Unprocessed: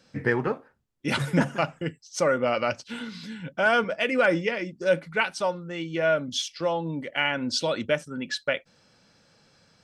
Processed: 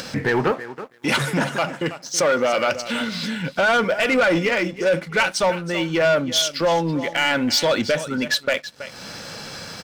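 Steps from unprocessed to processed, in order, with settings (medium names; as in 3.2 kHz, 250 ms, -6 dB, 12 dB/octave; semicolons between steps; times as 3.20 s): peak limiter -16.5 dBFS, peak gain reduction 7.5 dB; upward compressor, threshold -31 dBFS; bass shelf 370 Hz -5 dB; feedback delay 326 ms, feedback 19%, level -16 dB; waveshaping leveller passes 2; 0.51–2.75 s: high-pass 180 Hz 6 dB/octave; trim +4.5 dB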